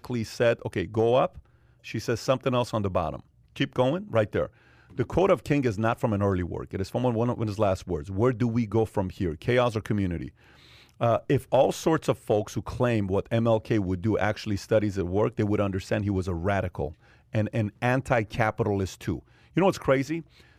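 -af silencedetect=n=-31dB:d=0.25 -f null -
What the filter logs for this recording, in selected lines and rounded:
silence_start: 1.27
silence_end: 1.87 | silence_duration: 0.61
silence_start: 3.20
silence_end: 3.56 | silence_duration: 0.37
silence_start: 4.46
silence_end: 4.99 | silence_duration: 0.53
silence_start: 10.28
silence_end: 11.01 | silence_duration: 0.73
silence_start: 16.89
silence_end: 17.34 | silence_duration: 0.46
silence_start: 19.19
silence_end: 19.57 | silence_duration: 0.38
silence_start: 20.20
silence_end: 20.59 | silence_duration: 0.39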